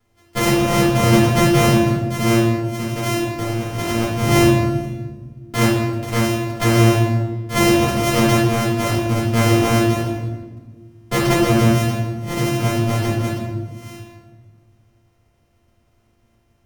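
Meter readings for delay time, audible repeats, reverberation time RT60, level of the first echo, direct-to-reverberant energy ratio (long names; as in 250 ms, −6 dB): no echo audible, no echo audible, 1.4 s, no echo audible, −7.5 dB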